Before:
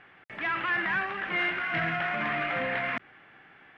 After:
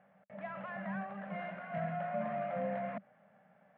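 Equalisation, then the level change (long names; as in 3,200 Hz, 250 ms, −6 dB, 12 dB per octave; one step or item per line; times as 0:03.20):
pair of resonant band-passes 340 Hz, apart 1.6 octaves
+5.0 dB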